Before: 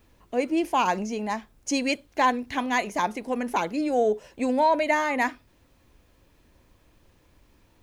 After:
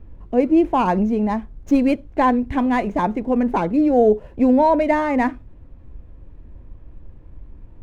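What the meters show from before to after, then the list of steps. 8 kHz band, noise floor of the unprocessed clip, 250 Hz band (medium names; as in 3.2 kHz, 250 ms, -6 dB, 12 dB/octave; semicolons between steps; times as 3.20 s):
under -10 dB, -61 dBFS, +11.0 dB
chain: median filter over 9 samples; tilt EQ -4 dB/octave; trim +3.5 dB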